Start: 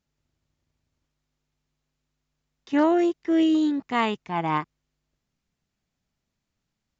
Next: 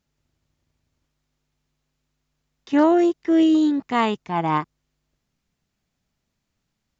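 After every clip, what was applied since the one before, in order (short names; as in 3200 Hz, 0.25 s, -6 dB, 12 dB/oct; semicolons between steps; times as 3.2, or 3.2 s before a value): dynamic EQ 2300 Hz, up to -4 dB, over -43 dBFS, Q 1.3; gain +4 dB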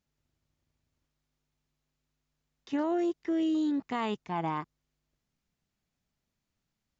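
limiter -16.5 dBFS, peak gain reduction 8.5 dB; gain -7 dB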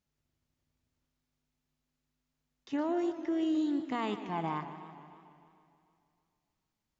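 spring tank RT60 2.4 s, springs 48 ms, chirp 35 ms, DRR 14 dB; warbling echo 0.151 s, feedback 65%, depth 151 cents, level -13 dB; gain -2.5 dB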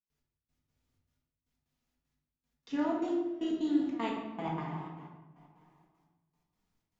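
step gate ".x...x.xxx" 154 bpm -24 dB; shoebox room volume 400 m³, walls mixed, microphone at 1.8 m; gain -2.5 dB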